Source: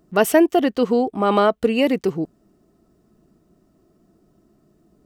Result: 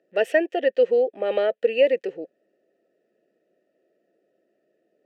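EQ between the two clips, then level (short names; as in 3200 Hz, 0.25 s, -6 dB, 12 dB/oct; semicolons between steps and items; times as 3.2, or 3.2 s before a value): vowel filter e; HPF 420 Hz 6 dB/oct; +8.5 dB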